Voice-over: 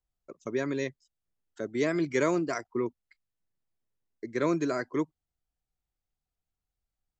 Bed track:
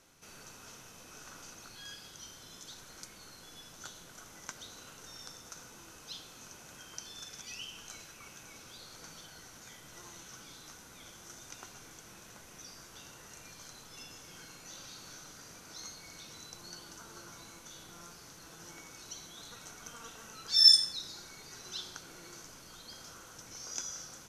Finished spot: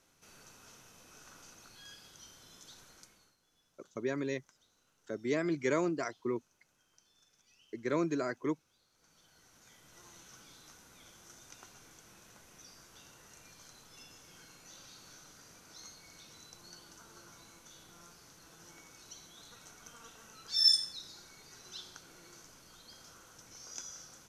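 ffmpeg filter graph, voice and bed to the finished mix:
-filter_complex "[0:a]adelay=3500,volume=-4.5dB[a];[1:a]volume=11.5dB,afade=t=out:st=2.82:d=0.54:silence=0.141254,afade=t=in:st=8.94:d=1.24:silence=0.141254[b];[a][b]amix=inputs=2:normalize=0"

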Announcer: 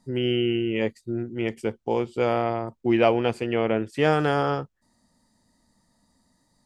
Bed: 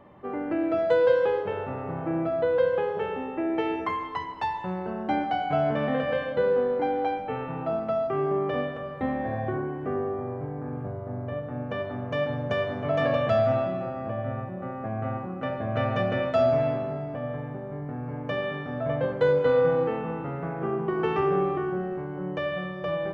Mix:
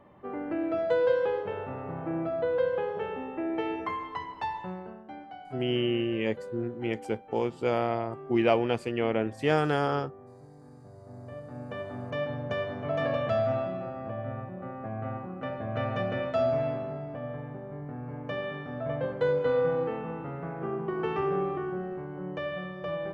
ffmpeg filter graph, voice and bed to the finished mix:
-filter_complex "[0:a]adelay=5450,volume=-4dB[a];[1:a]volume=9dB,afade=t=out:st=4.58:d=0.46:silence=0.211349,afade=t=in:st=10.83:d=1.17:silence=0.223872[b];[a][b]amix=inputs=2:normalize=0"

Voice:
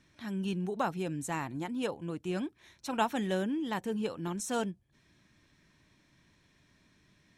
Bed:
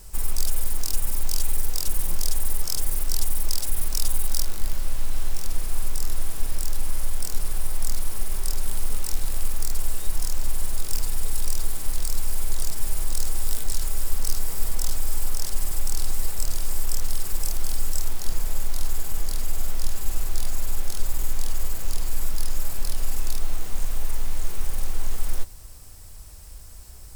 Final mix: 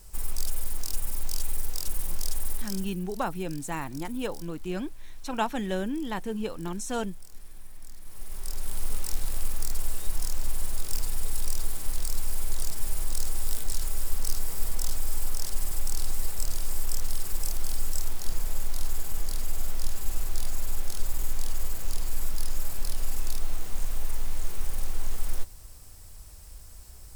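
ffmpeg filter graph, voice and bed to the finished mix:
-filter_complex "[0:a]adelay=2400,volume=1.5dB[a];[1:a]volume=11dB,afade=t=out:st=2.51:d=0.45:silence=0.188365,afade=t=in:st=8.01:d=0.9:silence=0.149624[b];[a][b]amix=inputs=2:normalize=0"

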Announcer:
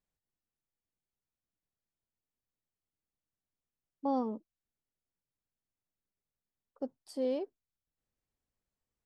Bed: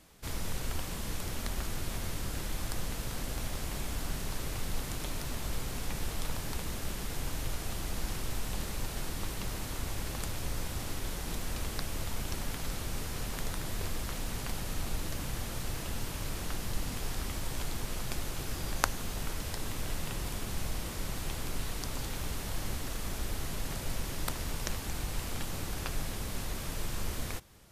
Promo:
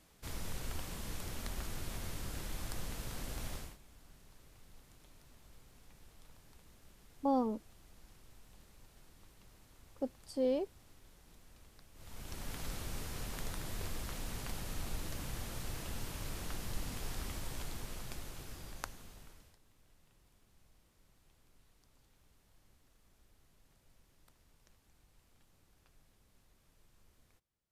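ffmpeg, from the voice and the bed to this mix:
-filter_complex "[0:a]adelay=3200,volume=0.5dB[a];[1:a]volume=13dB,afade=t=out:st=3.53:d=0.24:silence=0.11885,afade=t=in:st=11.94:d=0.66:silence=0.112202,afade=t=out:st=17.28:d=2.31:silence=0.0446684[b];[a][b]amix=inputs=2:normalize=0"

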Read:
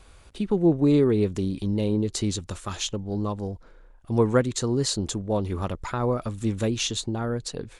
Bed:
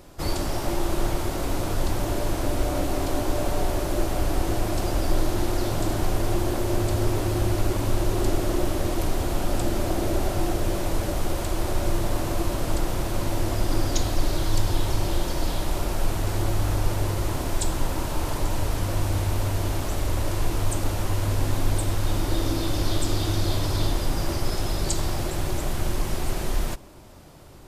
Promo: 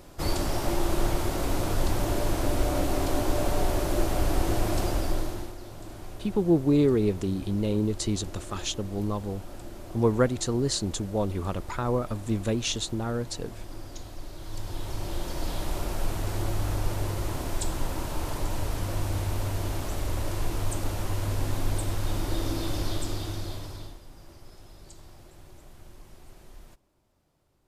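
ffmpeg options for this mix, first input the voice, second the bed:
-filter_complex "[0:a]adelay=5850,volume=-2dB[a];[1:a]volume=11.5dB,afade=t=out:st=4.79:d=0.76:silence=0.158489,afade=t=in:st=14.36:d=1.28:silence=0.237137,afade=t=out:st=22.73:d=1.27:silence=0.112202[b];[a][b]amix=inputs=2:normalize=0"

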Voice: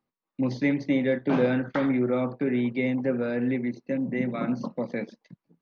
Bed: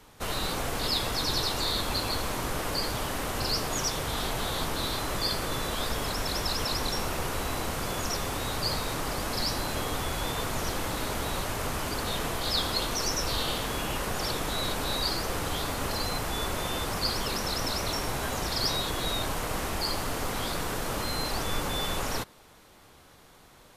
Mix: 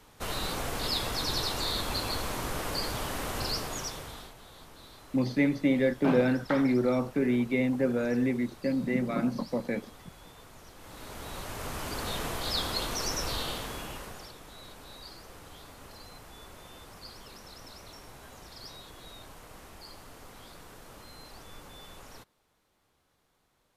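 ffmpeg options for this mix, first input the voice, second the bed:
-filter_complex "[0:a]adelay=4750,volume=-1dB[a];[1:a]volume=15dB,afade=t=out:st=3.4:d=0.94:silence=0.125893,afade=t=in:st=10.76:d=1.32:silence=0.133352,afade=t=out:st=13.26:d=1.06:silence=0.177828[b];[a][b]amix=inputs=2:normalize=0"

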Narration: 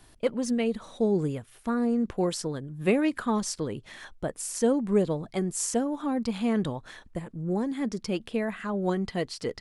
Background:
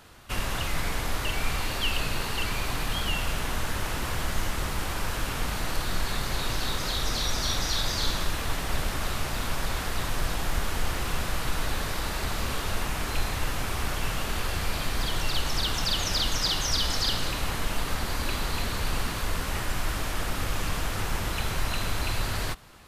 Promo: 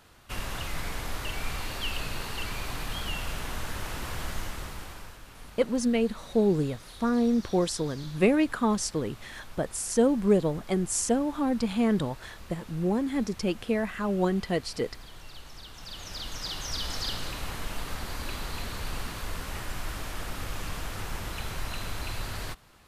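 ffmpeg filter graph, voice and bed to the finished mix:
-filter_complex "[0:a]adelay=5350,volume=1.5dB[a];[1:a]volume=7.5dB,afade=t=out:st=4.28:d=0.91:silence=0.211349,afade=t=in:st=15.73:d=1.23:silence=0.237137[b];[a][b]amix=inputs=2:normalize=0"

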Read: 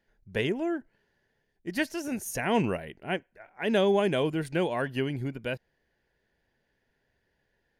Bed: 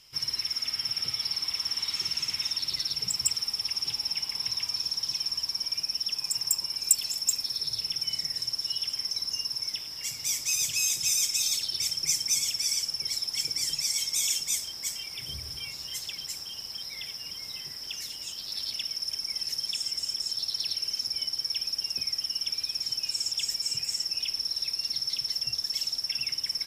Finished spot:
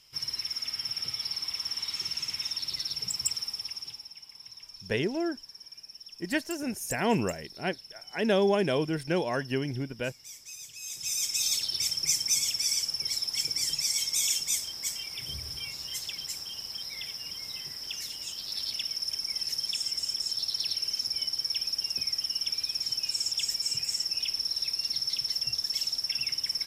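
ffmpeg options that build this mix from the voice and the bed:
-filter_complex "[0:a]adelay=4550,volume=-0.5dB[a];[1:a]volume=13.5dB,afade=t=out:st=3.38:d=0.72:silence=0.211349,afade=t=in:st=10.8:d=0.72:silence=0.149624[b];[a][b]amix=inputs=2:normalize=0"

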